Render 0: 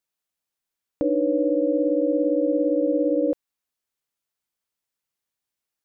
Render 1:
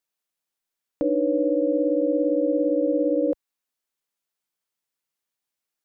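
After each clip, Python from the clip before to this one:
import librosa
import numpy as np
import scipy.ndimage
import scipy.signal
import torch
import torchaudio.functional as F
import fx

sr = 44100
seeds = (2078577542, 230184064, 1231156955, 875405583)

y = fx.peak_eq(x, sr, hz=67.0, db=-14.5, octaves=1.1)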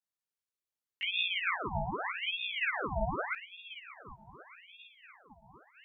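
y = fx.echo_diffused(x, sr, ms=921, feedback_pct=50, wet_db=-12)
y = fx.chorus_voices(y, sr, voices=6, hz=0.69, base_ms=17, depth_ms=2.3, mix_pct=65)
y = fx.ring_lfo(y, sr, carrier_hz=1700.0, swing_pct=80, hz=0.83)
y = y * 10.0 ** (-5.0 / 20.0)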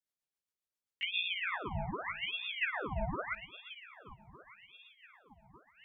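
y = fx.rotary(x, sr, hz=7.5)
y = y + 10.0 ** (-22.5 / 20.0) * np.pad(y, (int(352 * sr / 1000.0), 0))[:len(y)]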